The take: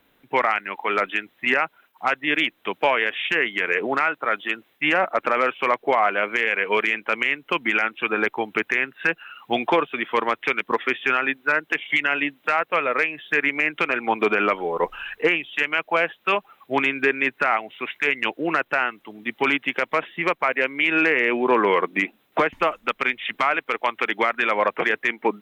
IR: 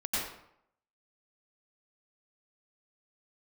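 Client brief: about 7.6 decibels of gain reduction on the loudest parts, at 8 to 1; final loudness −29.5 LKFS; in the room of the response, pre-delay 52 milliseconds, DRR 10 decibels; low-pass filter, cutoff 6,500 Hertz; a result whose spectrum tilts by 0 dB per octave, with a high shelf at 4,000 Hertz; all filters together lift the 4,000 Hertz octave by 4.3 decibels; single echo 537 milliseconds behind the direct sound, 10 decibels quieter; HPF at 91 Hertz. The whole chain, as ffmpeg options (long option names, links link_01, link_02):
-filter_complex "[0:a]highpass=91,lowpass=6500,highshelf=frequency=4000:gain=6,equalizer=frequency=4000:width_type=o:gain=3.5,acompressor=threshold=-22dB:ratio=8,aecho=1:1:537:0.316,asplit=2[link_01][link_02];[1:a]atrim=start_sample=2205,adelay=52[link_03];[link_02][link_03]afir=irnorm=-1:irlink=0,volume=-17dB[link_04];[link_01][link_04]amix=inputs=2:normalize=0,volume=-3dB"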